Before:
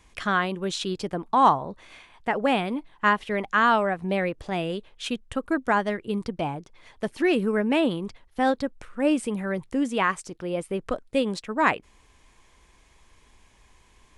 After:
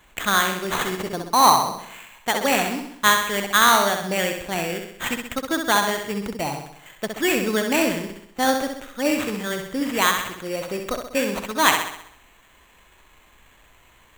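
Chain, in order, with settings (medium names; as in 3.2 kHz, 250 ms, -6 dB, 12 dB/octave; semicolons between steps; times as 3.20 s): tilt shelf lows -4.5 dB, about 910 Hz; sample-rate reducer 5.1 kHz, jitter 0%; flutter echo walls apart 11.1 m, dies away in 0.69 s; trim +2.5 dB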